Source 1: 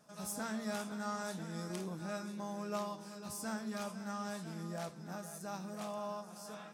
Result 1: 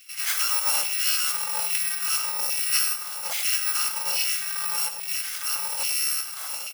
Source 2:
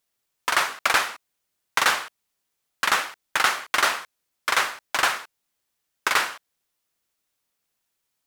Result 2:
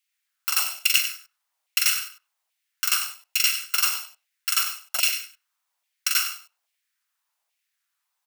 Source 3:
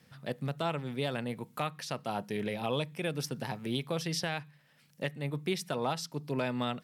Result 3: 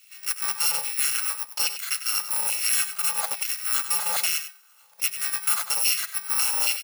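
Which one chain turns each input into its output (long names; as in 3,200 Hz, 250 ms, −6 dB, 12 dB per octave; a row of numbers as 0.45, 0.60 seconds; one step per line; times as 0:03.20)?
samples in bit-reversed order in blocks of 128 samples
far-end echo of a speakerphone 100 ms, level −23 dB
auto-filter high-pass saw down 1.2 Hz 700–2,500 Hz
on a send: single-tap delay 97 ms −11 dB
on the sum: loudness normalisation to −23 LKFS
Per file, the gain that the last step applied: +15.5, −2.0, +8.5 decibels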